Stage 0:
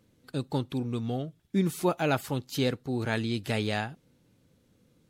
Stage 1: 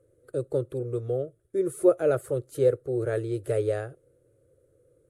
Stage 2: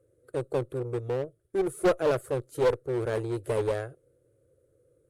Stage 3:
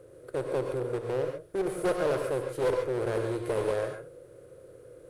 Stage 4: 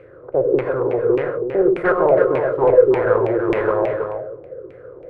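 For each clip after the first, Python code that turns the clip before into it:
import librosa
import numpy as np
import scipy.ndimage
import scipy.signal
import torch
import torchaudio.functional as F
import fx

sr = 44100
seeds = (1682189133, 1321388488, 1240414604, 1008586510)

y1 = fx.curve_eq(x, sr, hz=(130.0, 210.0, 360.0, 550.0, 870.0, 1300.0, 2700.0, 5300.0, 9800.0, 15000.0), db=(0, -24, 7, 11, -17, -2, -17, -18, 4, -18))
y2 = fx.clip_asym(y1, sr, top_db=-25.5, bottom_db=-13.0)
y2 = fx.cheby_harmonics(y2, sr, harmonics=(5, 6, 7), levels_db=(-18, -29, -18), full_scale_db=-13.5)
y3 = fx.bin_compress(y2, sr, power=0.6)
y3 = fx.rev_gated(y3, sr, seeds[0], gate_ms=160, shape='rising', drr_db=3.5)
y3 = y3 * librosa.db_to_amplitude(-6.0)
y4 = fx.filter_lfo_lowpass(y3, sr, shape='saw_down', hz=1.7, low_hz=320.0, high_hz=2400.0, q=5.0)
y4 = y4 + 10.0 ** (-7.0 / 20.0) * np.pad(y4, (int(324 * sr / 1000.0), 0))[:len(y4)]
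y4 = y4 * librosa.db_to_amplitude(7.0)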